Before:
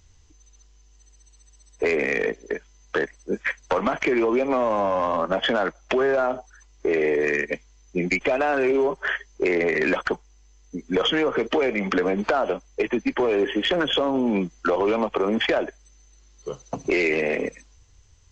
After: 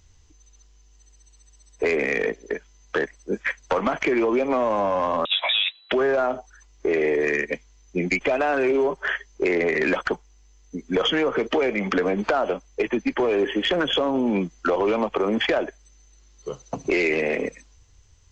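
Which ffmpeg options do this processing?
-filter_complex "[0:a]asettb=1/sr,asplit=3[a][b][c];[a]atrim=end=5.254[d];[b]atrim=start=5.25:end=5.92,asetpts=PTS-STARTPTS,afade=t=in:d=0.004:c=qsin,afade=t=out:st=0.666:d=0.004:c=qsin,lowpass=f=3.4k:t=q:w=0.5098,lowpass=f=3.4k:t=q:w=0.6013,lowpass=f=3.4k:t=q:w=0.9,lowpass=f=3.4k:t=q:w=2.563,afreqshift=-4000[e];[c]atrim=start=5.916[f];[d][e]acrossfade=d=0.004:c1=hsin:c2=qsin[g];[g][f]acrossfade=d=0.004:c1=qsin:c2=hsin"

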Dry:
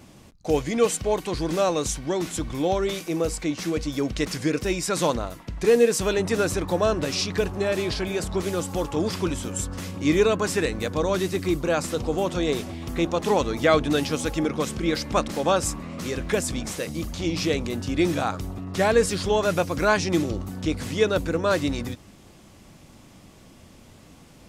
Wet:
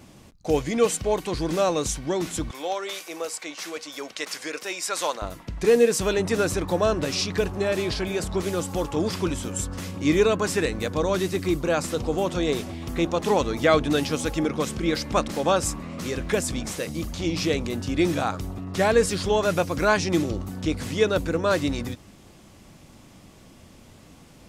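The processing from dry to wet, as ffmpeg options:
-filter_complex "[0:a]asettb=1/sr,asplit=3[a][b][c];[a]atrim=end=2.514[d];[b]atrim=start=2.51:end=5.22,asetpts=PTS-STARTPTS,afade=t=in:d=0.004:c=qsin,afade=t=out:st=2.706:d=0.004:c=qsin,highpass=660[e];[c]atrim=start=5.216[f];[d][e]acrossfade=d=0.004:c1=hsin:c2=qsin[g];[g][f]acrossfade=d=0.004:c1=qsin:c2=hsin"

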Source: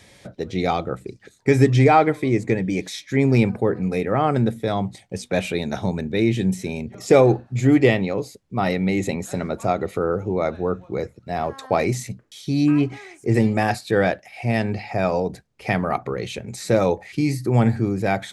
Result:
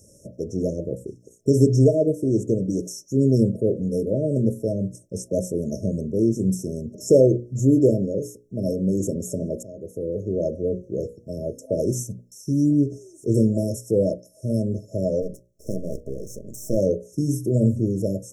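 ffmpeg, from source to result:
-filter_complex "[0:a]asplit=3[a][b][c];[a]afade=t=out:st=15.21:d=0.02[d];[b]aeval=exprs='max(val(0),0)':c=same,afade=t=in:st=15.21:d=0.02,afade=t=out:st=16.76:d=0.02[e];[c]afade=t=in:st=16.76:d=0.02[f];[d][e][f]amix=inputs=3:normalize=0,asplit=2[g][h];[g]atrim=end=9.63,asetpts=PTS-STARTPTS,afade=t=out:st=9.626:d=0.004:c=hsin:silence=0.105925[i];[h]atrim=start=9.63,asetpts=PTS-STARTPTS,afade=t=in:d=0.76:silence=0.105925[j];[i][j]concat=n=2:v=0:a=1,highshelf=f=7.8k:g=5,afftfilt=real='re*(1-between(b*sr/4096,650,5300))':imag='im*(1-between(b*sr/4096,650,5300))':win_size=4096:overlap=0.75,bandreject=f=60:t=h:w=6,bandreject=f=120:t=h:w=6,bandreject=f=180:t=h:w=6,bandreject=f=240:t=h:w=6,bandreject=f=300:t=h:w=6,bandreject=f=360:t=h:w=6,bandreject=f=420:t=h:w=6,bandreject=f=480:t=h:w=6,bandreject=f=540:t=h:w=6,bandreject=f=600:t=h:w=6"

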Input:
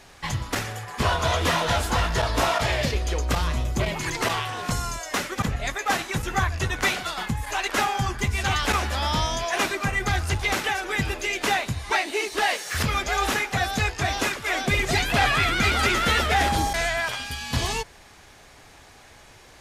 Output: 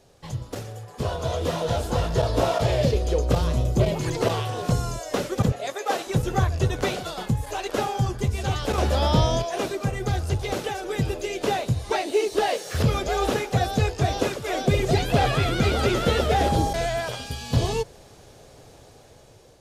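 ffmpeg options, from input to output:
-filter_complex "[0:a]asettb=1/sr,asplit=3[a][b][c];[a]atrim=end=5.524[d];[b]atrim=start=5.52:end=6.07,asetpts=PTS-STARTPTS,afade=t=in:d=0.004:c=qsin,afade=t=out:st=0.546:d=0.004:c=qsin,highpass=390[e];[c]atrim=start=6.066[f];[d][e]acrossfade=d=0.004:c1=hsin:c2=qsin[g];[g][f]acrossfade=d=0.004:c1=qsin:c2=hsin,asplit=3[h][i][j];[h]atrim=end=8.782[k];[i]atrim=start=8.778:end=9.422,asetpts=PTS-STARTPTS,volume=6.5dB[l];[j]atrim=start=9.418[m];[k][l]acrossfade=d=0.004:c1=hsin:c2=hsin[n];[n][m]acrossfade=d=0.004:c1=hsin:c2=hsin,dynaudnorm=f=750:g=5:m=11.5dB,equalizer=f=125:t=o:w=1:g=8,equalizer=f=500:t=o:w=1:g=10,equalizer=f=1k:t=o:w=1:g=-4,equalizer=f=2k:t=o:w=1:g=-9,acrossover=split=4300[o][p];[p]acompressor=threshold=-29dB:ratio=4:attack=1:release=60[q];[o][q]amix=inputs=2:normalize=0,volume=-9dB"

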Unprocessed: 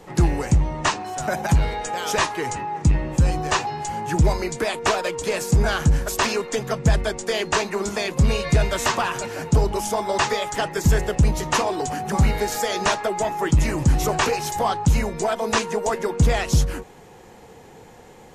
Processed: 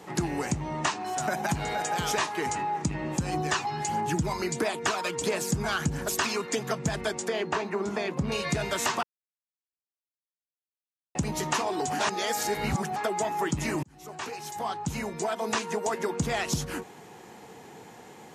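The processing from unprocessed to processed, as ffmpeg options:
-filter_complex "[0:a]asplit=2[a][b];[b]afade=t=in:st=1.01:d=0.01,afade=t=out:st=1.82:d=0.01,aecho=0:1:470|940|1410|1880:0.375837|0.112751|0.0338254|0.0101476[c];[a][c]amix=inputs=2:normalize=0,asplit=3[d][e][f];[d]afade=t=out:st=3.32:d=0.02[g];[e]aphaser=in_gain=1:out_gain=1:delay=1:decay=0.38:speed=1.5:type=triangular,afade=t=in:st=3.32:d=0.02,afade=t=out:st=6.57:d=0.02[h];[f]afade=t=in:st=6.57:d=0.02[i];[g][h][i]amix=inputs=3:normalize=0,asettb=1/sr,asplit=3[j][k][l];[j]atrim=end=7.284[m];[k]atrim=start=7.28:end=8.32,asetpts=PTS-STARTPTS,afade=t=in:d=0.004:c=qsin,afade=t=out:st=1.036:d=0.004:c=qsin,lowpass=f=1.4k:p=1[n];[l]atrim=start=8.316[o];[m][n]acrossfade=d=0.004:c1=hsin:c2=qsin[p];[p][o]acrossfade=d=0.004:c1=qsin:c2=hsin,asplit=6[q][r][s][t][u][v];[q]atrim=end=9.03,asetpts=PTS-STARTPTS,afade=t=out:st=9.026:d=0.004:c=hsin[w];[r]atrim=start=9.03:end=11.15,asetpts=PTS-STARTPTS,volume=0[x];[s]atrim=start=11.15:end=11.992,asetpts=PTS-STARTPTS,afade=t=in:d=0.004:c=hsin[y];[t]atrim=start=11.988:end=12.962,asetpts=PTS-STARTPTS,areverse[z];[u]atrim=start=12.958:end=13.83,asetpts=PTS-STARTPTS,afade=t=out:st=0.868:d=0.004:c=hsin[aa];[v]atrim=start=13.83,asetpts=PTS-STARTPTS,afade=t=in:d=2.26[ab];[w][x][y]concat=n=3:v=0:a=1[ac];[ac][z]acrossfade=d=0.004:c1=hsin:c2=hsin[ad];[aa][ab]concat=n=2:v=0:a=1[ae];[ad][ae]acrossfade=d=0.004:c1=hsin:c2=hsin,highpass=150,equalizer=f=520:w=4.6:g=-7,acompressor=threshold=-26dB:ratio=3"

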